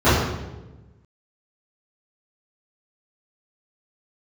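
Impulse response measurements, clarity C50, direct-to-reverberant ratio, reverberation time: 0.0 dB, -18.0 dB, 1.1 s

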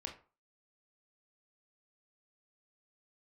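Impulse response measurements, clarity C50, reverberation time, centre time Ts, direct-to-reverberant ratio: 10.0 dB, 0.40 s, 17 ms, 2.0 dB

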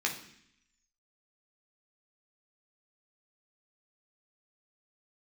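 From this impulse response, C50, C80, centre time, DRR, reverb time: 9.0 dB, 12.5 dB, 19 ms, -1.0 dB, 0.65 s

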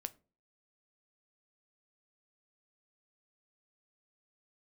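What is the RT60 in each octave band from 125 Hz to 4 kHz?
0.50 s, 0.45 s, 0.40 s, 0.30 s, 0.25 s, 0.20 s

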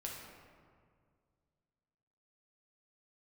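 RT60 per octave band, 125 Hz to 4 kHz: 2.8 s, 2.4 s, 2.2 s, 1.9 s, 1.5 s, 1.0 s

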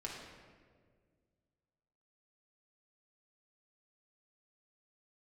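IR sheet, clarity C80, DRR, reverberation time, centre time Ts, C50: 3.5 dB, -4.0 dB, 1.8 s, 74 ms, 1.0 dB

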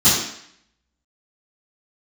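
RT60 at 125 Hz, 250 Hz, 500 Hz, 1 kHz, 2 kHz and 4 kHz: 0.55 s, 0.65 s, 0.65 s, 0.70 s, 0.75 s, 0.70 s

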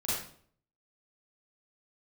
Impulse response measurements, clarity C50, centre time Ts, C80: -1.5 dB, 67 ms, 3.5 dB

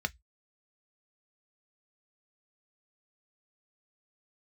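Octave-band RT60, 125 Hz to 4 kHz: 0.25 s, 0.10 s, 0.10 s, 0.10 s, 0.15 s, 0.15 s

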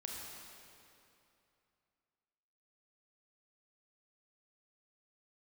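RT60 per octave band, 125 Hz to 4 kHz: 2.9 s, 2.8 s, 2.8 s, 2.8 s, 2.5 s, 2.2 s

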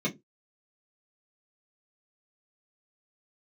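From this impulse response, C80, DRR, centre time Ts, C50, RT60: 27.5 dB, -4.0 dB, 13 ms, 19.5 dB, no single decay rate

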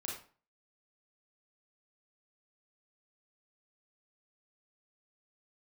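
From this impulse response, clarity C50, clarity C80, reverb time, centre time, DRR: 3.5 dB, 8.5 dB, 0.40 s, 42 ms, -3.0 dB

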